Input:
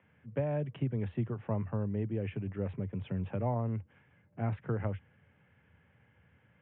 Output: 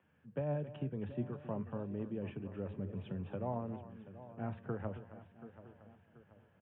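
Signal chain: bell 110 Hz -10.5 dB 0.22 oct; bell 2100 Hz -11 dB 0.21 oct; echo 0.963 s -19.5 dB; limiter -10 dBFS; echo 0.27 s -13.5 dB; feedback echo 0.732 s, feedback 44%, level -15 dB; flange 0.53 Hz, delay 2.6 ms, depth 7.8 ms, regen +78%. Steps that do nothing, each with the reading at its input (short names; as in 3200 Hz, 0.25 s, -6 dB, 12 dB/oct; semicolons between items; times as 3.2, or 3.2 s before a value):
limiter -10 dBFS: input peak -21.5 dBFS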